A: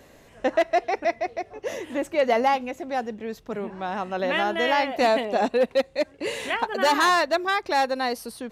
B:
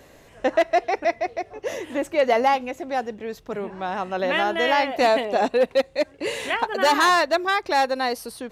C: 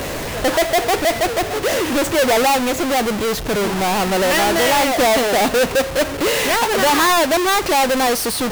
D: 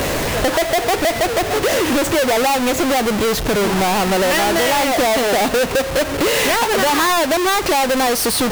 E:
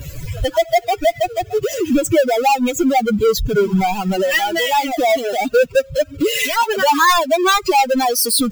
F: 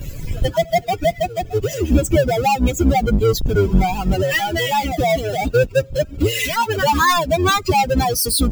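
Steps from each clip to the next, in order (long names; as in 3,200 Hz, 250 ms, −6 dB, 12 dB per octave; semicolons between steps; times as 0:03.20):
parametric band 220 Hz −4.5 dB 0.35 octaves; level +2 dB
each half-wave held at its own peak; power curve on the samples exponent 0.35; level −3 dB
downward compressor, threshold −21 dBFS, peak gain reduction 7 dB; level +5.5 dB
spectral dynamics exaggerated over time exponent 3; level +8 dB
sub-octave generator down 2 octaves, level +4 dB; level −2.5 dB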